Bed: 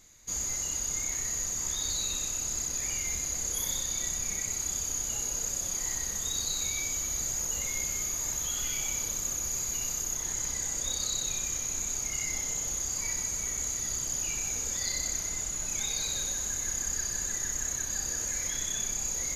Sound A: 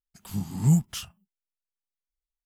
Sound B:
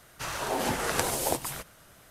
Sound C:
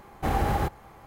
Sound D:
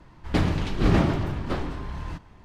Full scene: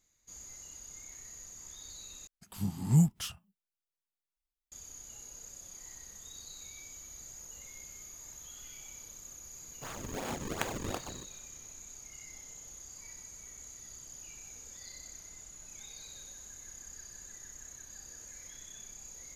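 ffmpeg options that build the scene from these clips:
ffmpeg -i bed.wav -i cue0.wav -i cue1.wav -filter_complex "[0:a]volume=-16.5dB[link_01];[2:a]acrusher=samples=36:mix=1:aa=0.000001:lfo=1:lforange=57.6:lforate=2.7[link_02];[link_01]asplit=2[link_03][link_04];[link_03]atrim=end=2.274[link_05];[1:a]atrim=end=2.45,asetpts=PTS-STARTPTS,volume=-3.5dB[link_06];[link_04]atrim=start=4.716[link_07];[link_02]atrim=end=2.1,asetpts=PTS-STARTPTS,volume=-9dB,afade=type=in:duration=0.004:curve=hsin,afade=type=out:start_time=2.096:duration=0.004:curve=hsin,adelay=424242S[link_08];[link_05][link_06]acrossfade=duration=0.004:curve1=hsin:curve2=hsin[link_09];[link_09][link_07]acrossfade=duration=0.004:curve1=hsin:curve2=hsin[link_10];[link_10][link_08]amix=inputs=2:normalize=0" out.wav

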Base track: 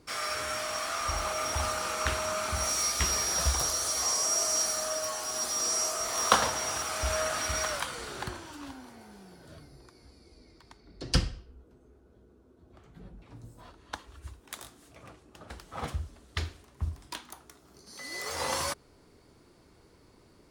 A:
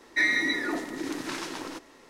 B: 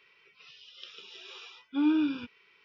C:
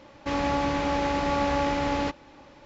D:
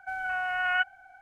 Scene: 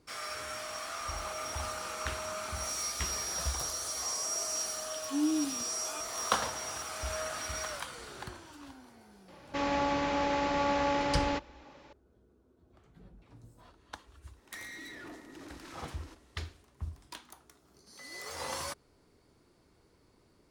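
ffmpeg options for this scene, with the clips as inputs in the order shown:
ffmpeg -i bed.wav -i cue0.wav -i cue1.wav -i cue2.wav -filter_complex "[0:a]volume=-6.5dB[link_01];[2:a]acrossover=split=660[link_02][link_03];[link_03]adelay=740[link_04];[link_02][link_04]amix=inputs=2:normalize=0[link_05];[3:a]lowshelf=frequency=180:gain=-8.5[link_06];[1:a]asoftclip=type=hard:threshold=-29.5dB[link_07];[link_05]atrim=end=2.64,asetpts=PTS-STARTPTS,volume=-4dB,afade=type=in:duration=0.004:curve=hsin,afade=type=out:start_time=2.636:duration=0.004:curve=hsin,adelay=148617S[link_08];[link_06]atrim=end=2.65,asetpts=PTS-STARTPTS,volume=-3dB,afade=type=in:duration=0.004:curve=hsin,afade=type=out:start_time=2.646:duration=0.004:curve=hsin,adelay=9280[link_09];[link_07]atrim=end=2.09,asetpts=PTS-STARTPTS,volume=-14.5dB,afade=type=in:duration=0.004:curve=hsin,afade=type=out:start_time=2.086:duration=0.004:curve=hsin,adelay=14360[link_10];[link_01][link_08][link_09][link_10]amix=inputs=4:normalize=0" out.wav

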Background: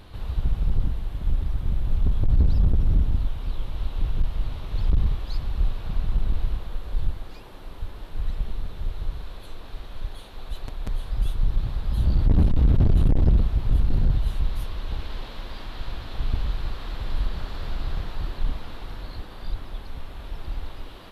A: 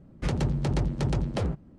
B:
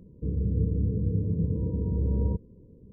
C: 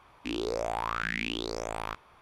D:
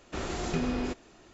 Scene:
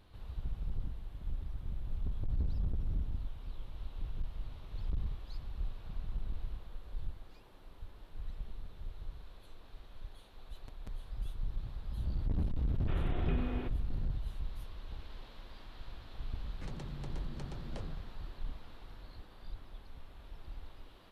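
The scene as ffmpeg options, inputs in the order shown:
ffmpeg -i bed.wav -i cue0.wav -i cue1.wav -i cue2.wav -i cue3.wav -filter_complex "[0:a]volume=-15dB[link_01];[4:a]aresample=8000,aresample=44100[link_02];[1:a]acompressor=threshold=-32dB:ratio=6:attack=3.2:release=140:knee=1:detection=peak[link_03];[link_02]atrim=end=1.33,asetpts=PTS-STARTPTS,volume=-8.5dB,afade=type=in:duration=0.004:curve=hsin,afade=type=out:start_time=1.326:duration=0.004:curve=hsin,adelay=12750[link_04];[link_03]atrim=end=1.78,asetpts=PTS-STARTPTS,volume=-9dB,afade=type=in:duration=0.004:curve=hsin,afade=type=out:start_time=1.776:duration=0.004:curve=hsin,adelay=16390[link_05];[link_01][link_04][link_05]amix=inputs=3:normalize=0" out.wav

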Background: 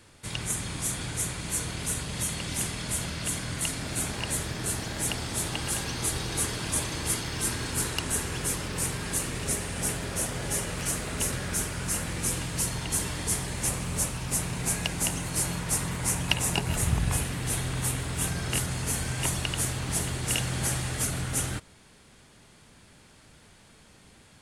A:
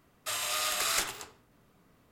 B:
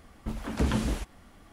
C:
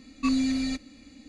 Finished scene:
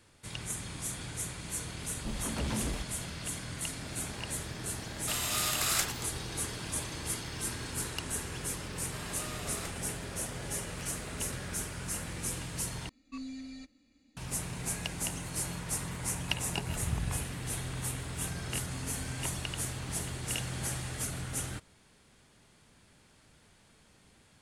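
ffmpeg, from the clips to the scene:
ffmpeg -i bed.wav -i cue0.wav -i cue1.wav -i cue2.wav -filter_complex "[1:a]asplit=2[link_01][link_02];[3:a]asplit=2[link_03][link_04];[0:a]volume=-7dB[link_05];[2:a]asoftclip=type=tanh:threshold=-29dB[link_06];[link_01]highshelf=frequency=6600:gain=6[link_07];[link_02]tiltshelf=frequency=810:gain=7.5[link_08];[link_04]acompressor=threshold=-33dB:ratio=6:attack=3.2:release=140:knee=1:detection=peak[link_09];[link_05]asplit=2[link_10][link_11];[link_10]atrim=end=12.894[link_12];[link_03]atrim=end=1.28,asetpts=PTS-STARTPTS,volume=-17dB[link_13];[link_11]atrim=start=14.166[link_14];[link_06]atrim=end=1.52,asetpts=PTS-STARTPTS,volume=-1.5dB,afade=type=in:duration=0.004:curve=hsin,afade=type=out:start_time=1.516:duration=0.004:curve=hsin,adelay=1790[link_15];[link_07]atrim=end=2.11,asetpts=PTS-STARTPTS,volume=-3dB,afade=type=in:duration=0.004:curve=hsin,afade=type=out:start_time=2.106:duration=0.004:curve=hsin,adelay=212121S[link_16];[link_08]atrim=end=2.11,asetpts=PTS-STARTPTS,volume=-8.5dB,afade=type=in:duration=0.004:curve=hsin,afade=type=out:start_time=2.106:duration=0.004:curve=hsin,adelay=8670[link_17];[link_09]atrim=end=1.28,asetpts=PTS-STARTPTS,volume=-15dB,afade=type=in:duration=0.004:curve=hsin,afade=type=out:start_time=1.276:duration=0.004:curve=hsin,adelay=18500[link_18];[link_12][link_13]acrossfade=duration=0.004:curve1=hsin:curve2=hsin[link_19];[link_19][link_14]acrossfade=duration=0.004:curve1=hsin:curve2=hsin[link_20];[link_20][link_15][link_16][link_17][link_18]amix=inputs=5:normalize=0" out.wav

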